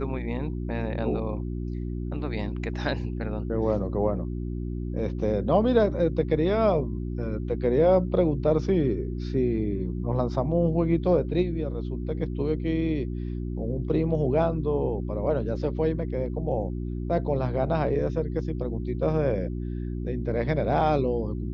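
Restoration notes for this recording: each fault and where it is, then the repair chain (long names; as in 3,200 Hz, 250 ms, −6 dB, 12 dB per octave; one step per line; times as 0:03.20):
mains hum 60 Hz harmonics 6 −31 dBFS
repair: hum removal 60 Hz, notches 6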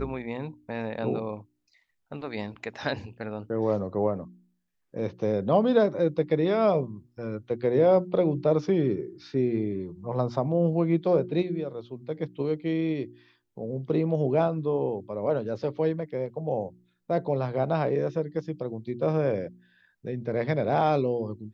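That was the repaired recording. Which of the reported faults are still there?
none of them is left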